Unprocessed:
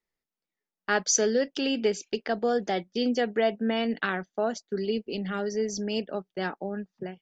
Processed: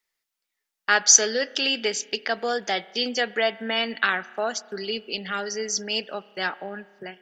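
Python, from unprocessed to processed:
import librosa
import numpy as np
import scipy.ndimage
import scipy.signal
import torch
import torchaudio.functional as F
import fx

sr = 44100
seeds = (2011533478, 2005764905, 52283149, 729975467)

y = fx.tilt_shelf(x, sr, db=-9.5, hz=650.0)
y = fx.rev_spring(y, sr, rt60_s=1.6, pass_ms=(30,), chirp_ms=70, drr_db=18.5)
y = y * librosa.db_to_amplitude(1.0)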